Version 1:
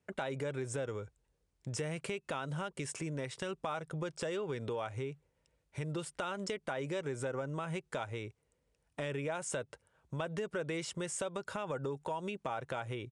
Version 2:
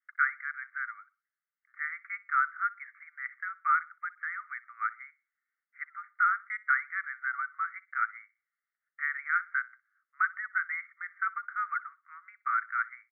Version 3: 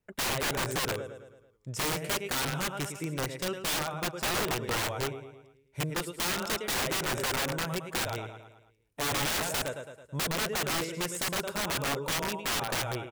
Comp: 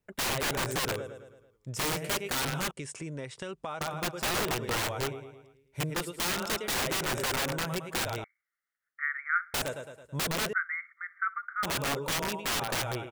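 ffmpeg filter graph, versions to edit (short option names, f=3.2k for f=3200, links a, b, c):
-filter_complex "[1:a]asplit=2[a][b];[2:a]asplit=4[c][d][e][f];[c]atrim=end=2.712[g];[0:a]atrim=start=2.708:end=3.812[h];[d]atrim=start=3.808:end=8.242[i];[a]atrim=start=8.238:end=9.542[j];[e]atrim=start=9.538:end=10.532[k];[b]atrim=start=10.528:end=11.632[l];[f]atrim=start=11.628[m];[g][h]acrossfade=d=0.004:c1=hsin:c2=hsin[n];[n][i]acrossfade=d=0.004:c1=hsin:c2=hsin[o];[o][j]acrossfade=d=0.004:c1=hsin:c2=hsin[p];[p][k]acrossfade=d=0.004:c1=hsin:c2=hsin[q];[q][l]acrossfade=d=0.004:c1=hsin:c2=hsin[r];[r][m]acrossfade=d=0.004:c1=hsin:c2=hsin"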